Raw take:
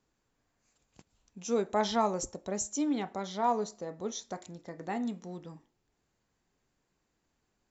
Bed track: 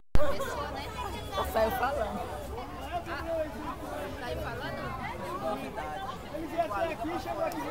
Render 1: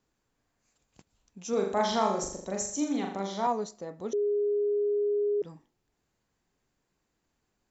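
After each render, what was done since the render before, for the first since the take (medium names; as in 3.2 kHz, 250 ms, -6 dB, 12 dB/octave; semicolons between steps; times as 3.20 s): 1.49–3.47 s: flutter echo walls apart 7 m, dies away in 0.59 s; 4.13–5.42 s: bleep 412 Hz -24 dBFS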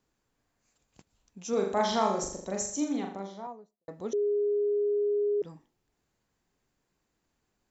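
2.68–3.88 s: studio fade out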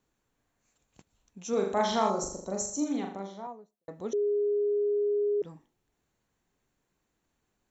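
2.10–2.86 s: time-frequency box 1.5–3.9 kHz -10 dB; band-stop 4.9 kHz, Q 8.2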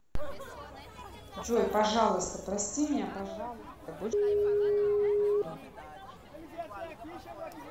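add bed track -10.5 dB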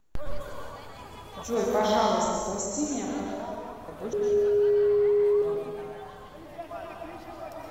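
plate-style reverb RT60 1.3 s, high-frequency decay 0.85×, pre-delay 105 ms, DRR 0 dB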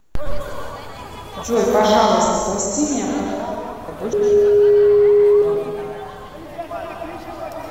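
trim +10 dB; peak limiter -3 dBFS, peak gain reduction 2.5 dB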